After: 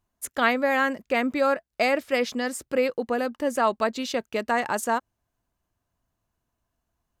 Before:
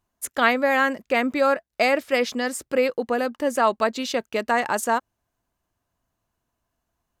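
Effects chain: low shelf 190 Hz +4.5 dB; gain -3 dB

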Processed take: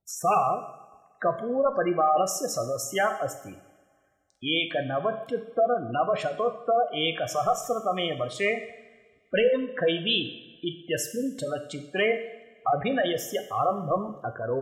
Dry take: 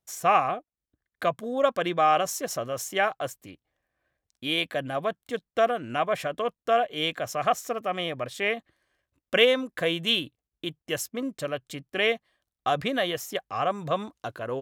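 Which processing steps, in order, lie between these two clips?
hard clip -19.5 dBFS, distortion -12 dB; spectral gate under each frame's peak -15 dB strong; two-slope reverb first 0.81 s, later 2.1 s, from -17 dB, DRR 7 dB; gain +2 dB

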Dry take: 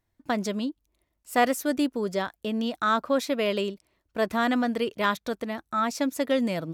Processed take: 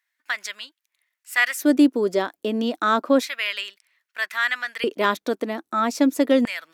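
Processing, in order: LFO high-pass square 0.31 Hz 300–1800 Hz; gain +3 dB

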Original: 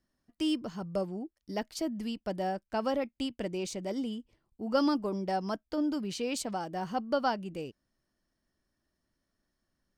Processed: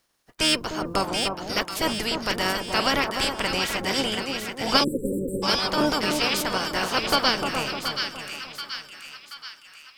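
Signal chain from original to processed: spectral limiter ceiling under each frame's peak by 26 dB; harmoniser -12 st -13 dB, -5 st -13 dB; split-band echo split 1300 Hz, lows 0.301 s, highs 0.729 s, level -5 dB; spectral delete 4.84–5.43, 580–7300 Hz; gain +7.5 dB

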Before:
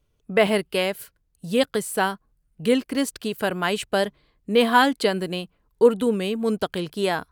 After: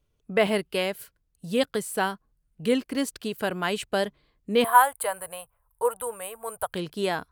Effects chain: 4.64–6.73 EQ curve 110 Hz 0 dB, 210 Hz -27 dB, 350 Hz -26 dB, 500 Hz -3 dB, 960 Hz +6 dB, 5600 Hz -18 dB, 9100 Hz +14 dB; gain -3.5 dB

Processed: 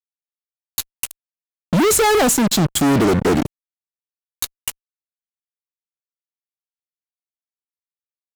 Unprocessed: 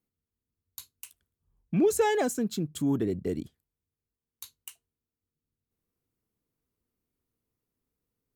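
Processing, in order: fuzz box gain 43 dB, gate -45 dBFS

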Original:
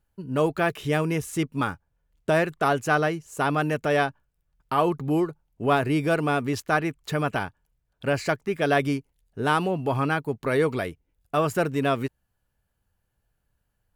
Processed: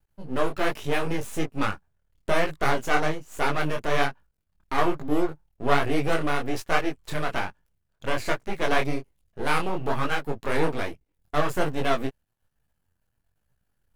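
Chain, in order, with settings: half-wave rectifier; detuned doubles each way 41 cents; gain +6 dB

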